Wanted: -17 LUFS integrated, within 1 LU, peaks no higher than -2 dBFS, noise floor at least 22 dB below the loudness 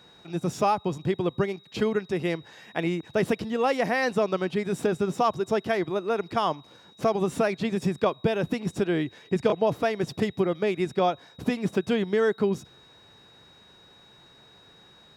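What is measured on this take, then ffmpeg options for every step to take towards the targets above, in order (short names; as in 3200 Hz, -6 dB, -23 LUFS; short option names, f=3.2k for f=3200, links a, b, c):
steady tone 3800 Hz; tone level -54 dBFS; loudness -27.0 LUFS; peak -9.5 dBFS; loudness target -17.0 LUFS
-> -af "bandreject=f=3.8k:w=30"
-af "volume=10dB,alimiter=limit=-2dB:level=0:latency=1"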